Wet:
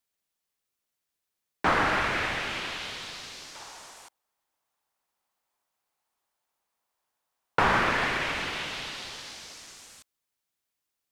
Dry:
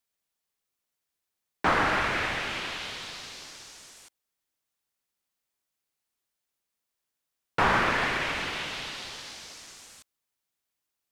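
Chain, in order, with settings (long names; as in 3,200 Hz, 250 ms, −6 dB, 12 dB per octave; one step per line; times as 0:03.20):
0:03.55–0:07.59: parametric band 880 Hz +13 dB 1.4 octaves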